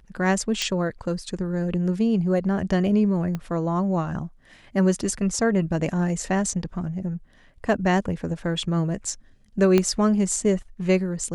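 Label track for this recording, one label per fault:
0.620000	0.620000	pop -12 dBFS
3.350000	3.350000	pop -17 dBFS
9.780000	9.780000	pop -7 dBFS

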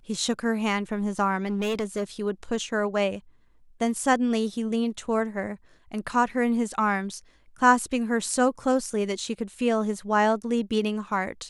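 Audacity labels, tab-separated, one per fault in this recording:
1.460000	2.040000	clipped -23.5 dBFS

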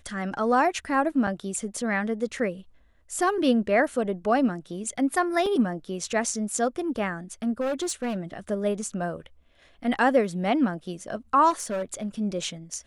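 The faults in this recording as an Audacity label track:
1.270000	1.270000	gap 4.7 ms
5.460000	5.460000	gap 3.7 ms
7.600000	8.170000	clipped -24 dBFS
11.500000	12.070000	clipped -25 dBFS

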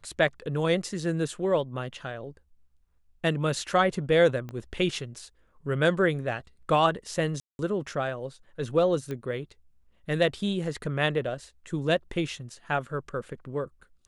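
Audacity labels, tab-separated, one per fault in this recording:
4.490000	4.490000	pop -25 dBFS
7.400000	7.590000	gap 0.191 s
9.110000	9.110000	pop -22 dBFS

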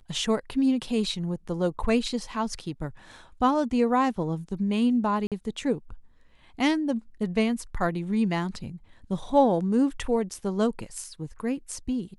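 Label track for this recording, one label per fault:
5.270000	5.320000	gap 47 ms

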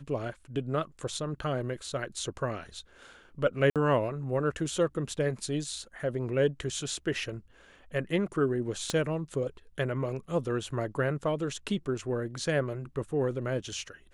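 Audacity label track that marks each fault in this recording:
3.700000	3.760000	gap 57 ms
8.900000	8.900000	pop -16 dBFS

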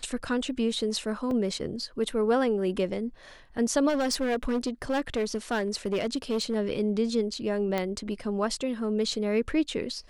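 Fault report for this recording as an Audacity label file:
1.310000	1.310000	gap 2.3 ms
3.880000	6.560000	clipped -23 dBFS
7.780000	7.780000	pop -15 dBFS

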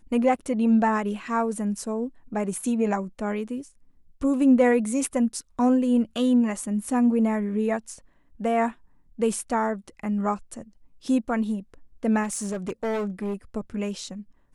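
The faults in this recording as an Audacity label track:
12.230000	13.340000	clipped -24.5 dBFS

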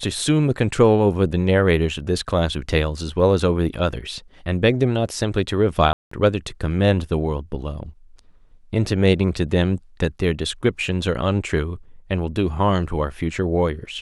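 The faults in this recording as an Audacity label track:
5.930000	6.110000	gap 0.184 s

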